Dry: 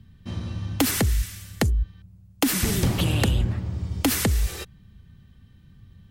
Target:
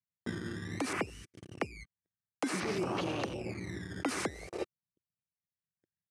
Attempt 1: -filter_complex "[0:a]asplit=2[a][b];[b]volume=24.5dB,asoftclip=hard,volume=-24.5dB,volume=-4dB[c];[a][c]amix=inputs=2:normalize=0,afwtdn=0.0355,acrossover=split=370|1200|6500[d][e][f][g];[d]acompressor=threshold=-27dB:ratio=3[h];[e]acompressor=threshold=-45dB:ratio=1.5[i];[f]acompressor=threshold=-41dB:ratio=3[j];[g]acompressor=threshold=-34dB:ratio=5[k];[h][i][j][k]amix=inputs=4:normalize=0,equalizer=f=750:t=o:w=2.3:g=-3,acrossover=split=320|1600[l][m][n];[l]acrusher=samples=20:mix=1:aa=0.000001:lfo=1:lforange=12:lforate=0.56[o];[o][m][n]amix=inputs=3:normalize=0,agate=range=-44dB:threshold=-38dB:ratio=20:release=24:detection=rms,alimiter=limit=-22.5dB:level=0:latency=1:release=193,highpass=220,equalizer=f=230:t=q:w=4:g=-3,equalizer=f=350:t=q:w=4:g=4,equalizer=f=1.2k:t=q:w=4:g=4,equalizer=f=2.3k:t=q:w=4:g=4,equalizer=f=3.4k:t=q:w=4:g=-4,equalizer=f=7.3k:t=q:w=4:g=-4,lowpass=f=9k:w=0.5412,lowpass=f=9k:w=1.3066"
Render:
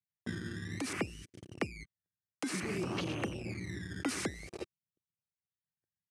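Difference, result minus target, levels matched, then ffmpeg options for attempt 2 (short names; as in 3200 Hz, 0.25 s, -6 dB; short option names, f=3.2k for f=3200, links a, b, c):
overloaded stage: distortion +27 dB; 1000 Hz band -4.0 dB
-filter_complex "[0:a]asplit=2[a][b];[b]volume=13dB,asoftclip=hard,volume=-13dB,volume=-4dB[c];[a][c]amix=inputs=2:normalize=0,afwtdn=0.0355,acrossover=split=370|1200|6500[d][e][f][g];[d]acompressor=threshold=-27dB:ratio=3[h];[e]acompressor=threshold=-45dB:ratio=1.5[i];[f]acompressor=threshold=-41dB:ratio=3[j];[g]acompressor=threshold=-34dB:ratio=5[k];[h][i][j][k]amix=inputs=4:normalize=0,equalizer=f=750:t=o:w=2.3:g=6,acrossover=split=320|1600[l][m][n];[l]acrusher=samples=20:mix=1:aa=0.000001:lfo=1:lforange=12:lforate=0.56[o];[o][m][n]amix=inputs=3:normalize=0,agate=range=-44dB:threshold=-38dB:ratio=20:release=24:detection=rms,alimiter=limit=-22.5dB:level=0:latency=1:release=193,highpass=220,equalizer=f=230:t=q:w=4:g=-3,equalizer=f=350:t=q:w=4:g=4,equalizer=f=1.2k:t=q:w=4:g=4,equalizer=f=2.3k:t=q:w=4:g=4,equalizer=f=3.4k:t=q:w=4:g=-4,equalizer=f=7.3k:t=q:w=4:g=-4,lowpass=f=9k:w=0.5412,lowpass=f=9k:w=1.3066"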